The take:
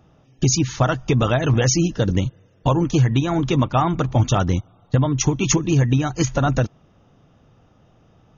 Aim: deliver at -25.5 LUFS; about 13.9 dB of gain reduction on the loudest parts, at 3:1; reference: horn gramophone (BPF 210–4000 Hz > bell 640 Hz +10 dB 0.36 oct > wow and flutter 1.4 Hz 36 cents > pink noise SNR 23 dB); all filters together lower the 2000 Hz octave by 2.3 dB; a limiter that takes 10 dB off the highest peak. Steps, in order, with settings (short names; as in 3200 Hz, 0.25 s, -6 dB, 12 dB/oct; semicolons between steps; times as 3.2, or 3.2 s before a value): bell 2000 Hz -3 dB; compressor 3:1, threshold -32 dBFS; limiter -26.5 dBFS; BPF 210–4000 Hz; bell 640 Hz +10 dB 0.36 oct; wow and flutter 1.4 Hz 36 cents; pink noise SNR 23 dB; gain +12 dB